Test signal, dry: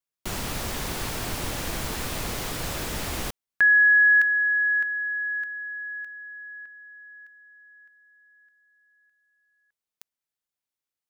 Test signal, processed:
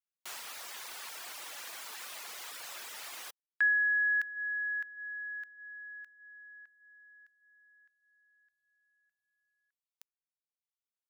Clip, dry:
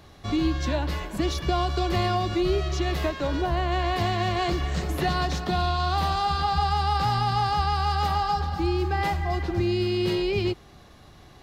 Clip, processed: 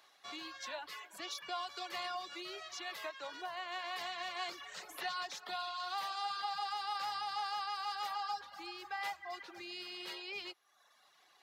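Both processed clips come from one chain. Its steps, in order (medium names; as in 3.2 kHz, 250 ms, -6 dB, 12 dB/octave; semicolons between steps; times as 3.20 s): high-pass 950 Hz 12 dB/octave; reverb removal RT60 0.88 s; trim -8 dB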